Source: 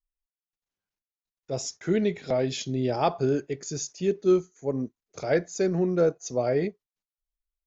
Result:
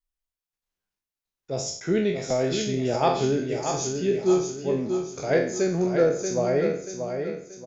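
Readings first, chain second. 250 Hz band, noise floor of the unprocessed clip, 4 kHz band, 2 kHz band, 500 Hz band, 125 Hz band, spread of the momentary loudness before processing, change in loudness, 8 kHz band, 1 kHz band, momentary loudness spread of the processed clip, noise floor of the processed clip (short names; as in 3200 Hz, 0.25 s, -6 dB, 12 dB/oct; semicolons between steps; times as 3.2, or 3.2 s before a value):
+1.5 dB, under -85 dBFS, +4.0 dB, +4.0 dB, +2.5 dB, +1.5 dB, 9 LU, +2.0 dB, n/a, +3.5 dB, 8 LU, under -85 dBFS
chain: spectral trails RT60 0.52 s; feedback echo 0.632 s, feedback 41%, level -6.5 dB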